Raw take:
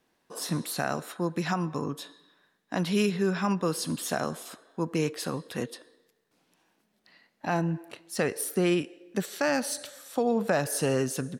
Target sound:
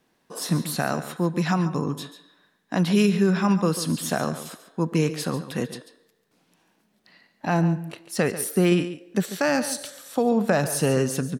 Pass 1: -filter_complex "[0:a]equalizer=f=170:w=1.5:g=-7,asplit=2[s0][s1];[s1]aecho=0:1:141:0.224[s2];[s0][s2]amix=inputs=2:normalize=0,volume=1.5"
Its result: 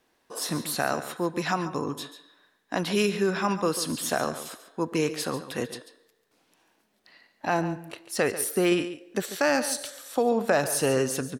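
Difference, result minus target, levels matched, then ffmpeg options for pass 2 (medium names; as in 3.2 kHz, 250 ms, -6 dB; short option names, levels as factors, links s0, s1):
125 Hz band -7.0 dB
-filter_complex "[0:a]equalizer=f=170:w=1.5:g=4.5,asplit=2[s0][s1];[s1]aecho=0:1:141:0.224[s2];[s0][s2]amix=inputs=2:normalize=0,volume=1.5"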